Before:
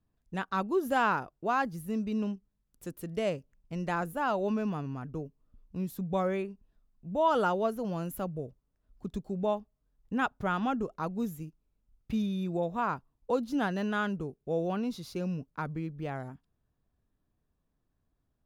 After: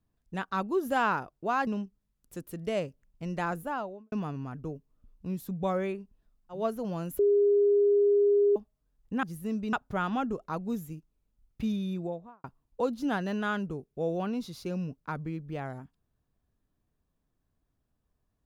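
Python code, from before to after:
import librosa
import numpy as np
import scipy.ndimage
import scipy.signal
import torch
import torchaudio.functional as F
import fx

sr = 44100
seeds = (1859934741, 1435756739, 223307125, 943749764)

y = fx.studio_fade_out(x, sr, start_s=4.06, length_s=0.56)
y = fx.studio_fade_out(y, sr, start_s=12.36, length_s=0.58)
y = fx.edit(y, sr, fx.move(start_s=1.67, length_s=0.5, to_s=10.23),
    fx.cut(start_s=7.07, length_s=0.5, crossfade_s=0.16),
    fx.bleep(start_s=8.19, length_s=1.37, hz=407.0, db=-19.5), tone=tone)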